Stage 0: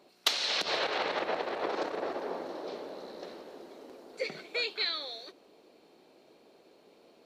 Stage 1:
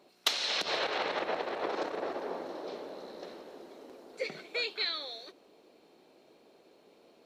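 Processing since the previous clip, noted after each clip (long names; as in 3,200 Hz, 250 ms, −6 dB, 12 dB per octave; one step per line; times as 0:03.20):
notch filter 4,600 Hz, Q 25
level −1 dB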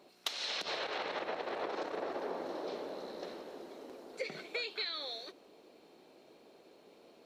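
downward compressor 12 to 1, threshold −35 dBFS, peak gain reduction 13 dB
level +1 dB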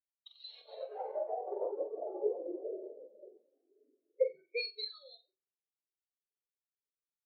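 flutter between parallel walls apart 7.7 metres, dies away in 0.72 s
every bin expanded away from the loudest bin 4 to 1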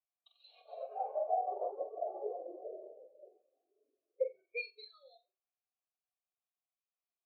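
formant filter a
level +9 dB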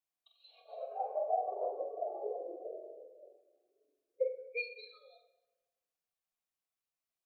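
rectangular room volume 680 cubic metres, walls mixed, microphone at 0.63 metres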